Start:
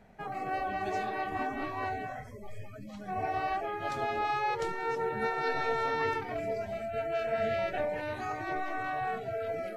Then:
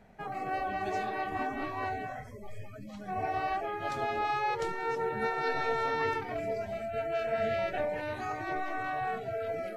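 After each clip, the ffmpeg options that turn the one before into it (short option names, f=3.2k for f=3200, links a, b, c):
-af anull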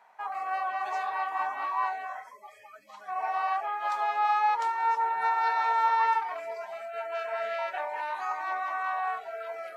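-af "highpass=f=980:t=q:w=5.8,volume=-1dB"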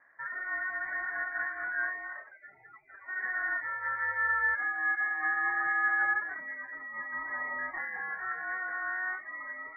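-af "lowpass=f=2.2k:t=q:w=0.5098,lowpass=f=2.2k:t=q:w=0.6013,lowpass=f=2.2k:t=q:w=0.9,lowpass=f=2.2k:t=q:w=2.563,afreqshift=-2600,volume=-3.5dB"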